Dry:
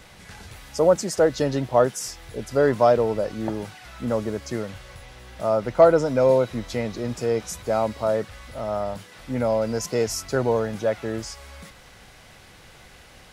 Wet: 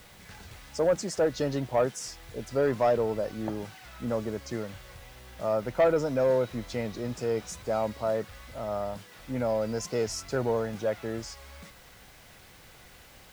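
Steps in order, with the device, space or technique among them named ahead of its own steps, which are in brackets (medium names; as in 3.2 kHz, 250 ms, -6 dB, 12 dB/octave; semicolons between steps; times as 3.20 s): compact cassette (saturation -11 dBFS, distortion -16 dB; low-pass 8.5 kHz; wow and flutter 27 cents; white noise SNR 29 dB); trim -5 dB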